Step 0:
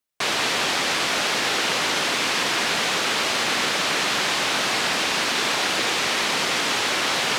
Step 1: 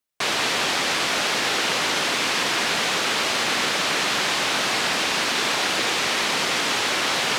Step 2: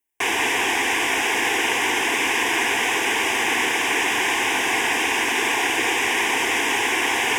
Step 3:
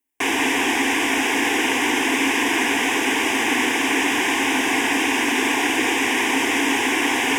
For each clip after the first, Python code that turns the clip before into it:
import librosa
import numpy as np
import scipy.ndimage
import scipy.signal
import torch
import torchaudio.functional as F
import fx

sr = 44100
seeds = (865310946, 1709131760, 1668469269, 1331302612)

y1 = x
y2 = fx.fixed_phaser(y1, sr, hz=870.0, stages=8)
y2 = F.gain(torch.from_numpy(y2), 5.0).numpy()
y3 = fx.peak_eq(y2, sr, hz=270.0, db=14.0, octaves=0.4)